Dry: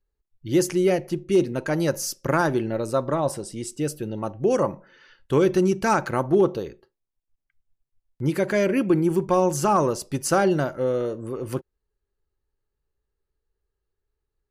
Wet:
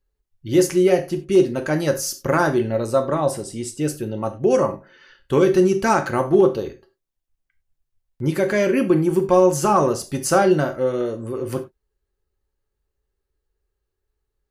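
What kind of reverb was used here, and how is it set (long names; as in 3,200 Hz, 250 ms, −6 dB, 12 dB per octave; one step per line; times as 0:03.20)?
reverb whose tail is shaped and stops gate 120 ms falling, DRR 5.5 dB
level +2 dB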